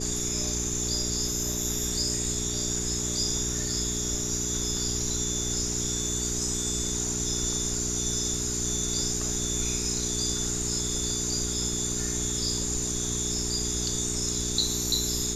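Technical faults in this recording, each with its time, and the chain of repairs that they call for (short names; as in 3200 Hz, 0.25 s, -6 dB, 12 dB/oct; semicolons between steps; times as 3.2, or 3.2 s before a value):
hum 60 Hz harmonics 7 -34 dBFS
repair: de-hum 60 Hz, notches 7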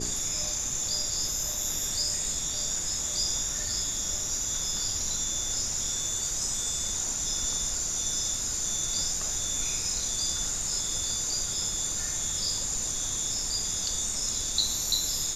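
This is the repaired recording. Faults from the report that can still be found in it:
none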